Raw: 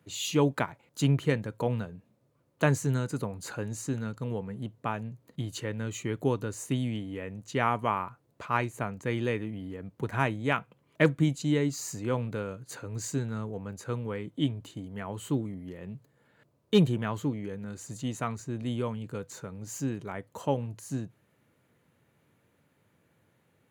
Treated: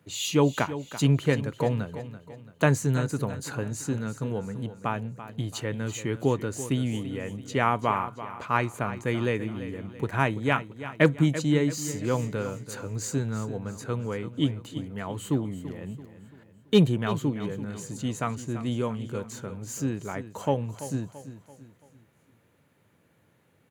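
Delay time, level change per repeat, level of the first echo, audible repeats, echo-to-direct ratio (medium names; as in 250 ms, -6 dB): 336 ms, -7.5 dB, -13.0 dB, 4, -12.0 dB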